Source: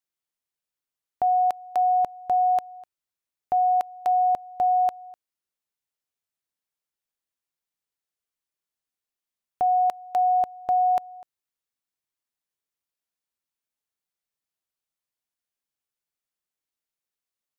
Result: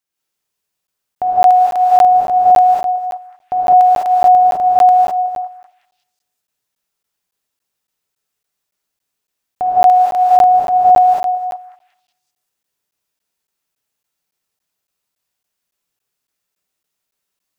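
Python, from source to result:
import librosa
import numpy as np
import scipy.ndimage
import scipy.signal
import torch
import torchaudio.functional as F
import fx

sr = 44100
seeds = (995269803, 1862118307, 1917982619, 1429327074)

y = fx.echo_stepped(x, sr, ms=185, hz=560.0, octaves=0.7, feedback_pct=70, wet_db=-11.0)
y = fx.rev_gated(y, sr, seeds[0], gate_ms=230, shape='rising', drr_db=-6.5)
y = fx.buffer_crackle(y, sr, first_s=0.87, period_s=0.28, block=512, kind='zero')
y = y * librosa.db_to_amplitude(5.0)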